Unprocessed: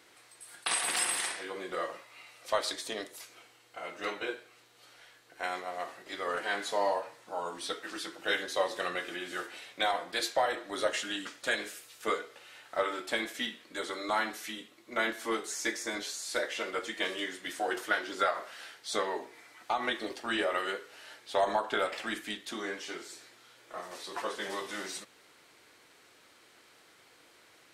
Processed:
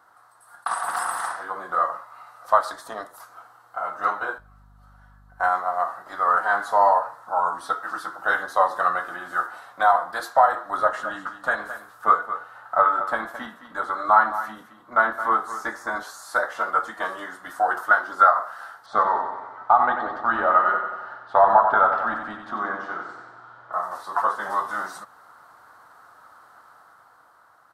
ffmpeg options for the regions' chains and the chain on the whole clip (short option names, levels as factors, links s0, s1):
-filter_complex "[0:a]asettb=1/sr,asplit=3[s0][s1][s2];[s0]atrim=end=4.384[s3];[s1]atrim=start=4.38:end=5.49,asetpts=PTS-STARTPTS,afade=t=in:d=0.004:c=qsin,afade=t=out:st=1.106:d=0.004:c=qsin,agate=range=0.282:threshold=0.00251:ratio=16:release=100:detection=peak,aecho=1:1:5.3:0.35,atrim=end_sample=48951,aeval=exprs='val(0)+0.00141*(sin(2*PI*50*n/s)+sin(2*PI*2*50*n/s)/2+sin(2*PI*3*50*n/s)/3+sin(2*PI*4*50*n/s)/4+sin(2*PI*5*50*n/s)/5)':c=same[s4];[s2]atrim=start=5.486[s5];[s3][s4]acrossfade=d=0.004:c1=hsin:c2=qsin[s6];[s6][s5]acrossfade=d=0.004:c1=qsin:c2=hsin,asettb=1/sr,asplit=3[s7][s8][s9];[s7]atrim=end=10.774[s10];[s8]atrim=start=10.77:end=15.96,asetpts=PTS-STARTPTS,afade=t=in:d=0.004:c=qsin,afade=t=out:st=5.186:d=0.004:c=qsin,bass=f=250:g=3,treble=f=4000:g=-6,aecho=1:1:217:0.251,atrim=end_sample=228879[s11];[s9]atrim=start=15.956[s12];[s10][s11]acrossfade=d=0.004:c1=hsin:c2=qsin[s13];[s13][s12]acrossfade=d=0.004:c1=qsin:c2=hsin,asettb=1/sr,asplit=3[s14][s15][s16];[s14]atrim=end=18.864[s17];[s15]atrim=start=18.86:end=23.73,asetpts=PTS-STARTPTS,afade=t=in:d=0.004:c=qsin,afade=t=out:st=4.866:d=0.004:c=qsin,lowpass=3300,lowshelf=f=370:g=4,aecho=1:1:92|184|276|368|460|552|644|736:0.447|0.264|0.155|0.0917|0.0541|0.0319|0.0188|0.0111,atrim=end_sample=214767[s18];[s16]atrim=start=23.726[s19];[s17][s18]acrossfade=d=0.004:c1=hsin:c2=qsin[s20];[s20][s19]acrossfade=d=0.004:c1=qsin:c2=hsin,firequalizer=gain_entry='entry(120,0);entry(380,-10);entry(720,8);entry(1300,13);entry(2300,-18);entry(4200,-11);entry(7100,-11);entry(12000,-3)':delay=0.05:min_phase=1,dynaudnorm=f=100:g=21:m=2"